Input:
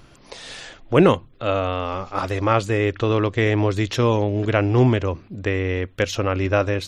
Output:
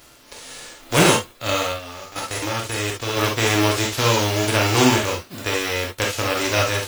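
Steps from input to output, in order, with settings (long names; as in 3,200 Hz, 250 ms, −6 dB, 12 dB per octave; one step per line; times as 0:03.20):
spectral envelope flattened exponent 0.3
0:01.62–0:03.17: output level in coarse steps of 12 dB
parametric band 360 Hz +3.5 dB 1.5 octaves
reverb whose tail is shaped and stops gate 90 ms flat, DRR −1.5 dB
level −4.5 dB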